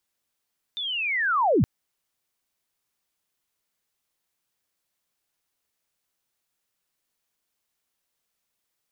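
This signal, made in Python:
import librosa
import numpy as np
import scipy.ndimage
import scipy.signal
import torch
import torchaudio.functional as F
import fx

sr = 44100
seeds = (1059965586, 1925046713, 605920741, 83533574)

y = fx.chirp(sr, length_s=0.87, from_hz=3600.0, to_hz=74.0, law='linear', from_db=-28.0, to_db=-15.5)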